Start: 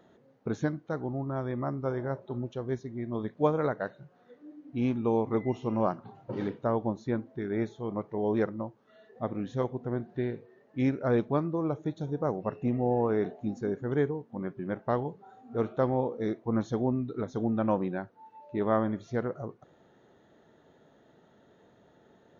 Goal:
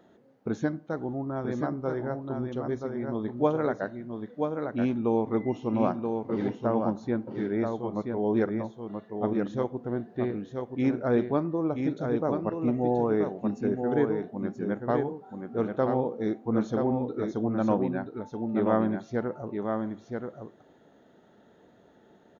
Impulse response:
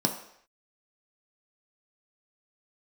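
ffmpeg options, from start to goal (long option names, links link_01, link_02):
-filter_complex "[0:a]aecho=1:1:979:0.562,asplit=2[link_01][link_02];[1:a]atrim=start_sample=2205,lowpass=3800[link_03];[link_02][link_03]afir=irnorm=-1:irlink=0,volume=-25.5dB[link_04];[link_01][link_04]amix=inputs=2:normalize=0"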